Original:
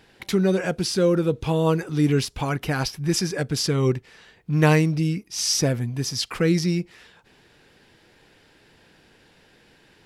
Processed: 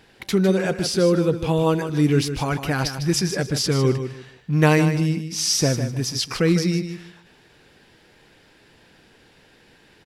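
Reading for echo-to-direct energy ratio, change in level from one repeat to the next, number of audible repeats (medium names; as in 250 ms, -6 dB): -9.0 dB, -12.5 dB, 3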